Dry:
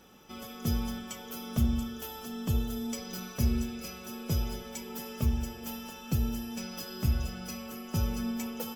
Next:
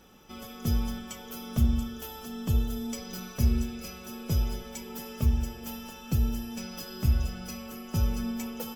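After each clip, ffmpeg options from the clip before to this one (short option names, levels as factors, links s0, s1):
-af "lowshelf=f=60:g=9"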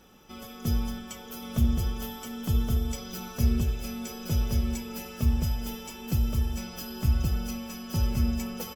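-af "aecho=1:1:1123:0.708"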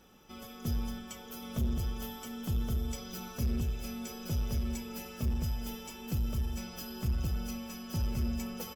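-af "asoftclip=type=tanh:threshold=0.0891,volume=0.631"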